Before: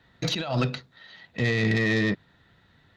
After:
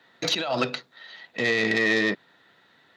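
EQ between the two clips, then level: high-pass 330 Hz 12 dB/octave; +4.0 dB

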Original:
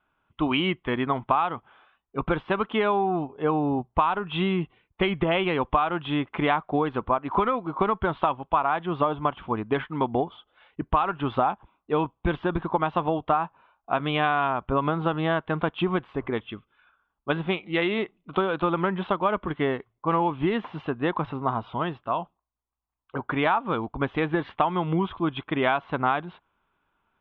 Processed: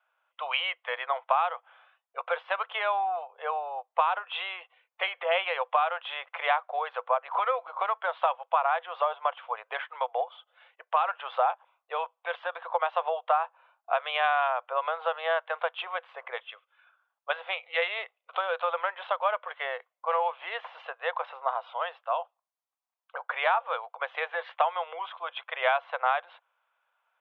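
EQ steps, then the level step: rippled Chebyshev high-pass 490 Hz, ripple 3 dB; 0.0 dB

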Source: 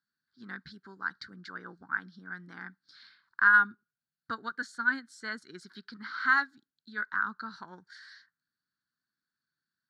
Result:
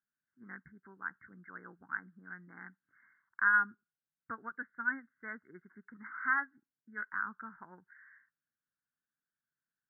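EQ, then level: brick-wall FIR low-pass 2.2 kHz; -6.0 dB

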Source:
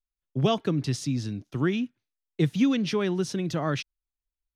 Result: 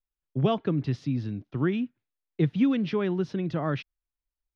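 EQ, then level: distance through air 310 m; 0.0 dB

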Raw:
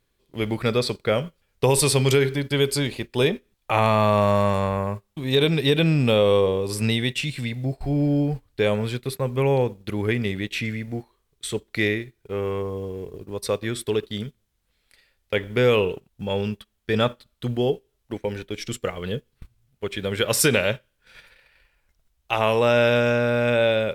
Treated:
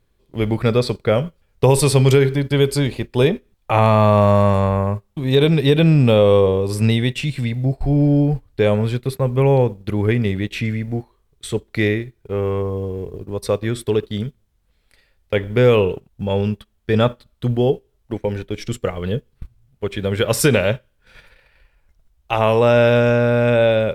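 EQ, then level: bass shelf 210 Hz +11.5 dB; peaking EQ 720 Hz +5 dB 2.4 oct; -1.0 dB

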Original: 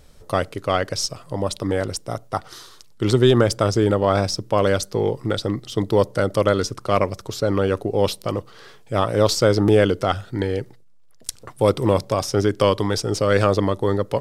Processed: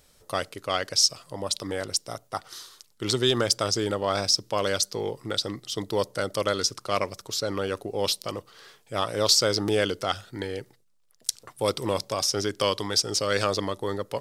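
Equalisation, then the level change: tilt EQ +2 dB/octave; dynamic bell 4.9 kHz, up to +7 dB, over -37 dBFS, Q 1; -6.5 dB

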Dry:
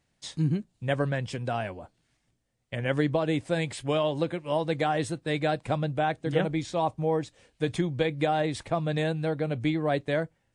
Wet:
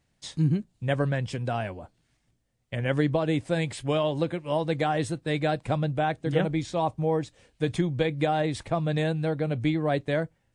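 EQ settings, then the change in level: bass shelf 180 Hz +4.5 dB; 0.0 dB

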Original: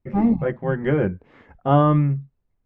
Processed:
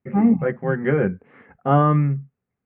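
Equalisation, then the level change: distance through air 150 m; cabinet simulation 170–2600 Hz, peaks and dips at 320 Hz -9 dB, 610 Hz -7 dB, 950 Hz -7 dB; +5.0 dB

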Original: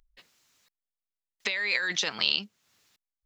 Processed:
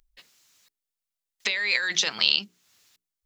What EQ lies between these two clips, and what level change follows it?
treble shelf 2.6 kHz +7 dB; hum notches 60/120/180/240/300/360/420 Hz; 0.0 dB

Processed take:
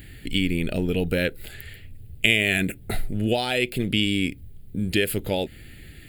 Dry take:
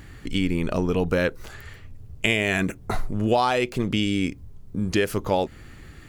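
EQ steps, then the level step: treble shelf 3.3 kHz +12 dB; static phaser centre 2.6 kHz, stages 4; 0.0 dB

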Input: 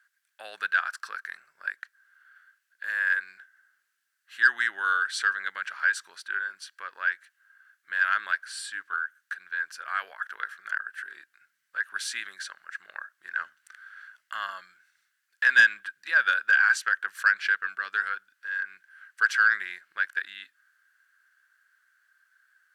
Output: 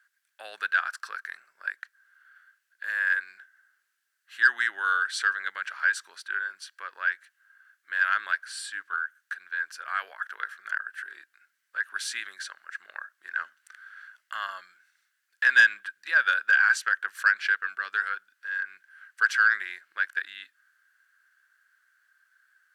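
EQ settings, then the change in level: high-pass 250 Hz 12 dB/octave; 0.0 dB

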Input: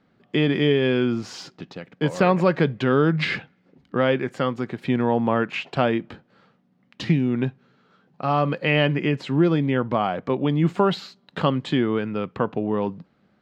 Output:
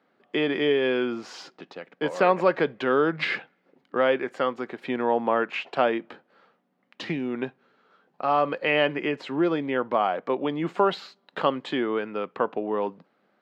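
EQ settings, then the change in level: high-pass 400 Hz 12 dB/octave; treble shelf 3.5 kHz -9 dB; +1.0 dB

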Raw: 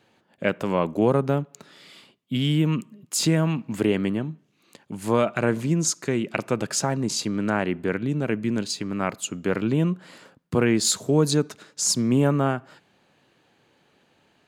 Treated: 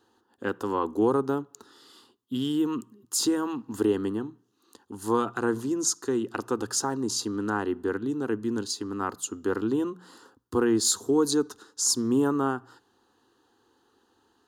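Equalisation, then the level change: hum notches 60/120/180 Hz; static phaser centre 610 Hz, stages 6; band-stop 7.9 kHz, Q 19; 0.0 dB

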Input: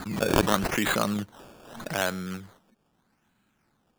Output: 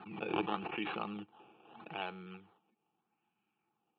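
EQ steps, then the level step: vowel filter u; cabinet simulation 120–3200 Hz, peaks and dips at 500 Hz +4 dB, 920 Hz +6 dB, 1.7 kHz +9 dB, 2.8 kHz +5 dB; static phaser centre 1.4 kHz, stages 8; +8.0 dB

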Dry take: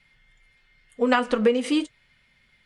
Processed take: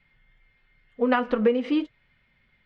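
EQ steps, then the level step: resonant low-pass 6 kHz, resonance Q 2.8; distance through air 470 m; 0.0 dB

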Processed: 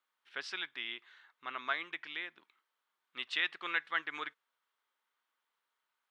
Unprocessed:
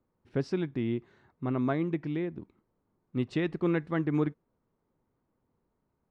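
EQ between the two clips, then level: resonant high-pass 1.5 kHz, resonance Q 1.6; peaking EQ 3.3 kHz +10.5 dB 0.66 oct; +1.0 dB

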